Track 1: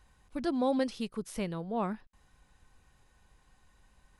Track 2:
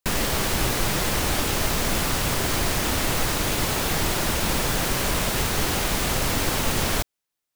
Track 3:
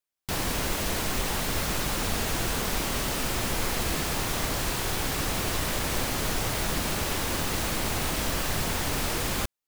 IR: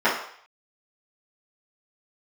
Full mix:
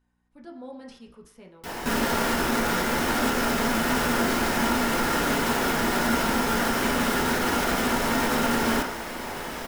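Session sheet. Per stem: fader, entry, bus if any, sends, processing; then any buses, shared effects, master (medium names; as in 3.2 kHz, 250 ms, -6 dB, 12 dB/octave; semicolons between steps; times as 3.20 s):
-17.5 dB, 0.00 s, send -16 dB, hum 60 Hz, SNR 20 dB; decay stretcher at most 85 dB/s
-4.5 dB, 1.80 s, send -13 dB, peak limiter -17 dBFS, peak gain reduction 6.5 dB; small resonant body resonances 240/1400 Hz, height 9 dB
-12.0 dB, 1.35 s, send -11 dB, none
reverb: on, RT60 0.60 s, pre-delay 3 ms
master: none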